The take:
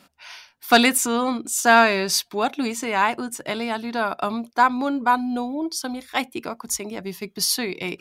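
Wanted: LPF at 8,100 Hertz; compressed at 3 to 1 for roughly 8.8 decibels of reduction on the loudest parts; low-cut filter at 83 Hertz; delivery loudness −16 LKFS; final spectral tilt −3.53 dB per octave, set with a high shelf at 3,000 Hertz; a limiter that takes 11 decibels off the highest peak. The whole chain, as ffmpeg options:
ffmpeg -i in.wav -af "highpass=83,lowpass=8100,highshelf=frequency=3000:gain=-8.5,acompressor=threshold=-22dB:ratio=3,volume=14.5dB,alimiter=limit=-6dB:level=0:latency=1" out.wav

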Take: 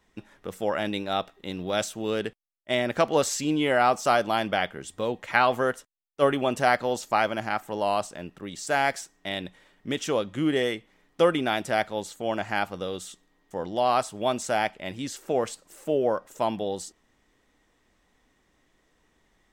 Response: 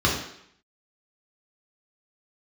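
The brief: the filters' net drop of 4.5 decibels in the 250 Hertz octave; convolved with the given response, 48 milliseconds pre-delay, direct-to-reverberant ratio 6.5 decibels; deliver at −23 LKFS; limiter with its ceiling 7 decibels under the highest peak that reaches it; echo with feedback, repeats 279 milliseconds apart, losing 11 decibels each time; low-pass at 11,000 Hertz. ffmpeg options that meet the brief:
-filter_complex "[0:a]lowpass=11000,equalizer=frequency=250:width_type=o:gain=-6,alimiter=limit=-13dB:level=0:latency=1,aecho=1:1:279|558|837:0.282|0.0789|0.0221,asplit=2[link_01][link_02];[1:a]atrim=start_sample=2205,adelay=48[link_03];[link_02][link_03]afir=irnorm=-1:irlink=0,volume=-23dB[link_04];[link_01][link_04]amix=inputs=2:normalize=0,volume=4.5dB"

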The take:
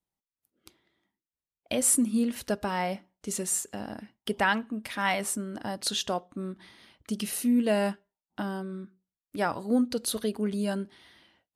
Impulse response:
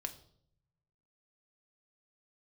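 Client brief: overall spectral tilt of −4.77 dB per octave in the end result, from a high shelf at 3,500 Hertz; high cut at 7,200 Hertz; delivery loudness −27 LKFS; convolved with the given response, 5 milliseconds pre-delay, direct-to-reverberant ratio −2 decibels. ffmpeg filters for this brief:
-filter_complex "[0:a]lowpass=7200,highshelf=frequency=3500:gain=-4,asplit=2[link_01][link_02];[1:a]atrim=start_sample=2205,adelay=5[link_03];[link_02][link_03]afir=irnorm=-1:irlink=0,volume=3.5dB[link_04];[link_01][link_04]amix=inputs=2:normalize=0,volume=-1.5dB"

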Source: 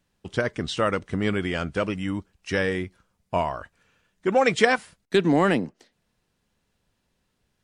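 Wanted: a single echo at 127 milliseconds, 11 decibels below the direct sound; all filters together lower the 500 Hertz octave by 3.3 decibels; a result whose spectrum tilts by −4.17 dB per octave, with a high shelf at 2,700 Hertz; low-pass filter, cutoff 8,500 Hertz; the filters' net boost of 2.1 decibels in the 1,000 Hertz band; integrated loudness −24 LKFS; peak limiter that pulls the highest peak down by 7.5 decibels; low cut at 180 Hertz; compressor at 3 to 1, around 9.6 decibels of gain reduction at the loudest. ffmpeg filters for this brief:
ffmpeg -i in.wav -af "highpass=180,lowpass=8500,equalizer=frequency=500:width_type=o:gain=-5,equalizer=frequency=1000:width_type=o:gain=4,highshelf=frequency=2700:gain=4,acompressor=threshold=-27dB:ratio=3,alimiter=limit=-20dB:level=0:latency=1,aecho=1:1:127:0.282,volume=9dB" out.wav

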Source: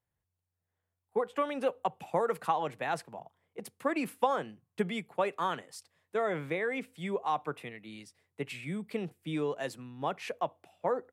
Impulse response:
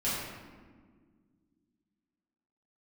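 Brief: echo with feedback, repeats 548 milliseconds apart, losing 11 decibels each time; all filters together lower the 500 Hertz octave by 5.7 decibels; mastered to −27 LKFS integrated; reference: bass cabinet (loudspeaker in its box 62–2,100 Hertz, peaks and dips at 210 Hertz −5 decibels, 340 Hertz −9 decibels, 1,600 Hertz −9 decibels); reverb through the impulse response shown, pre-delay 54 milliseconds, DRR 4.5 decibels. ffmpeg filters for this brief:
-filter_complex "[0:a]equalizer=frequency=500:width_type=o:gain=-5,aecho=1:1:548|1096|1644:0.282|0.0789|0.0221,asplit=2[link_01][link_02];[1:a]atrim=start_sample=2205,adelay=54[link_03];[link_02][link_03]afir=irnorm=-1:irlink=0,volume=-12.5dB[link_04];[link_01][link_04]amix=inputs=2:normalize=0,highpass=frequency=62:width=0.5412,highpass=frequency=62:width=1.3066,equalizer=frequency=210:width_type=q:width=4:gain=-5,equalizer=frequency=340:width_type=q:width=4:gain=-9,equalizer=frequency=1600:width_type=q:width=4:gain=-9,lowpass=frequency=2100:width=0.5412,lowpass=frequency=2100:width=1.3066,volume=10dB"

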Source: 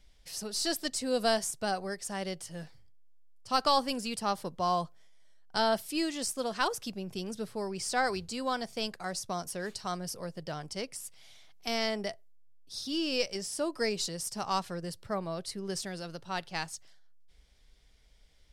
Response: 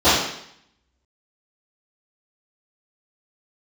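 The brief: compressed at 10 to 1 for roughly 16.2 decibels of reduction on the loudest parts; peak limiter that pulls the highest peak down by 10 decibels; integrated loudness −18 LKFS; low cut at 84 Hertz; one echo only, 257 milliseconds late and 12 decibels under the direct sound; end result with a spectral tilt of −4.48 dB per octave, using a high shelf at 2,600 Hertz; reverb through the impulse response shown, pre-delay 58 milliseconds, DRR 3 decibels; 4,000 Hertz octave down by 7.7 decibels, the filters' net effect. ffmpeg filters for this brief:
-filter_complex "[0:a]highpass=84,highshelf=frequency=2600:gain=-5.5,equalizer=frequency=4000:width_type=o:gain=-5,acompressor=threshold=-40dB:ratio=10,alimiter=level_in=11.5dB:limit=-24dB:level=0:latency=1,volume=-11.5dB,aecho=1:1:257:0.251,asplit=2[link_01][link_02];[1:a]atrim=start_sample=2205,adelay=58[link_03];[link_02][link_03]afir=irnorm=-1:irlink=0,volume=-28dB[link_04];[link_01][link_04]amix=inputs=2:normalize=0,volume=25dB"

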